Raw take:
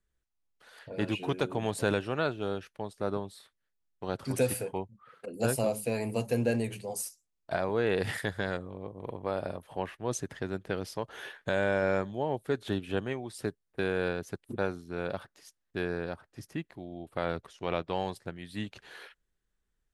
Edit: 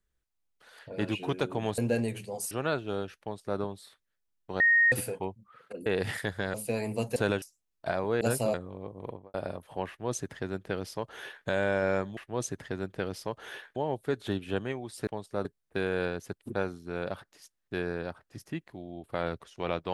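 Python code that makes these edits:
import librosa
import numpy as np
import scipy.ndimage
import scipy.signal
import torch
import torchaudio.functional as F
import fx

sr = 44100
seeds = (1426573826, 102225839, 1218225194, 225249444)

y = fx.studio_fade_out(x, sr, start_s=9.05, length_s=0.29)
y = fx.edit(y, sr, fx.swap(start_s=1.78, length_s=0.26, other_s=6.34, other_length_s=0.73),
    fx.duplicate(start_s=2.74, length_s=0.38, to_s=13.48),
    fx.bleep(start_s=4.13, length_s=0.32, hz=1860.0, db=-18.5),
    fx.swap(start_s=5.39, length_s=0.33, other_s=7.86, other_length_s=0.68),
    fx.duplicate(start_s=9.88, length_s=1.59, to_s=12.17), tone=tone)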